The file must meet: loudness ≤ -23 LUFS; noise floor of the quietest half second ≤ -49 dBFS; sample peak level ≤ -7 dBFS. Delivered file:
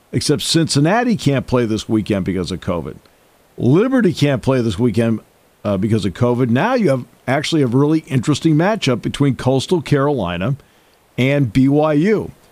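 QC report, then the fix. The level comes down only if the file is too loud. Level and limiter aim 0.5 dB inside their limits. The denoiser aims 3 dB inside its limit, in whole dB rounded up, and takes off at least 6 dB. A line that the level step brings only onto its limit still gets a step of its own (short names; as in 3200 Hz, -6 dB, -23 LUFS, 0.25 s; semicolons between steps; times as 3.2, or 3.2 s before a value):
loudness -16.5 LUFS: fail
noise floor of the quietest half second -53 dBFS: OK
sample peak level -3.5 dBFS: fail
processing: gain -7 dB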